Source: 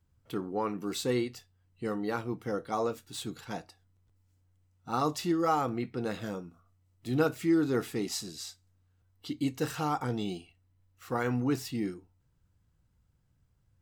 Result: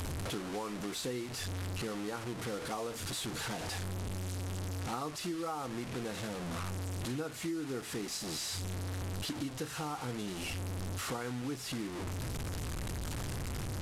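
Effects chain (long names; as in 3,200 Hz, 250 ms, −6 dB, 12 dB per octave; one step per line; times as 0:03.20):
linear delta modulator 64 kbit/s, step −31 dBFS
downward compressor 6 to 1, threshold −35 dBFS, peak gain reduction 13.5 dB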